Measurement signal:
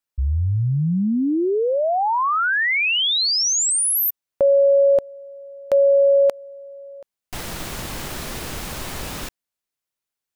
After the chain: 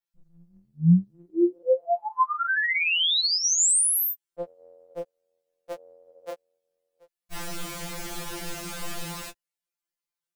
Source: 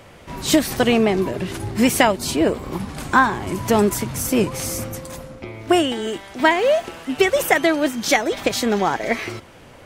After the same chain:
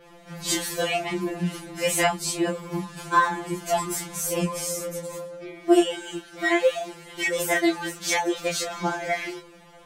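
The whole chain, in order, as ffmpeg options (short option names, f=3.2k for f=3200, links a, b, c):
-af "adynamicequalizer=threshold=0.0112:dfrequency=8100:dqfactor=1.5:tfrequency=8100:tqfactor=1.5:attack=5:release=100:ratio=0.375:range=2.5:mode=boostabove:tftype=bell,flanger=delay=19.5:depth=7.7:speed=0.85,afftfilt=real='re*2.83*eq(mod(b,8),0)':imag='im*2.83*eq(mod(b,8),0)':win_size=2048:overlap=0.75"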